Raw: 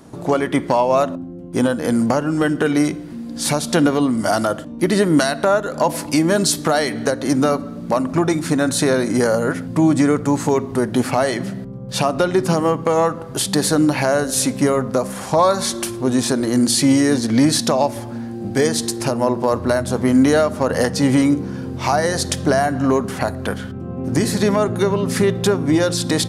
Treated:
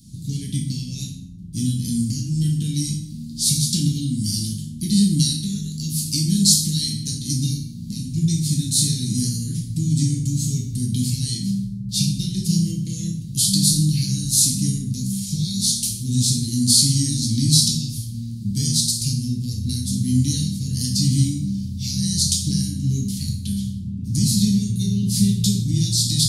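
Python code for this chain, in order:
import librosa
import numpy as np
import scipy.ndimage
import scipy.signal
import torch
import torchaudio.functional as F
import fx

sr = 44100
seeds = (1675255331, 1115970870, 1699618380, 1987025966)

y = scipy.signal.sosfilt(scipy.signal.ellip(3, 1.0, 60, [180.0, 4100.0], 'bandstop', fs=sr, output='sos'), x)
y = fx.rev_plate(y, sr, seeds[0], rt60_s=0.62, hf_ratio=0.85, predelay_ms=0, drr_db=-2.0)
y = F.gain(torch.from_numpy(y), 1.5).numpy()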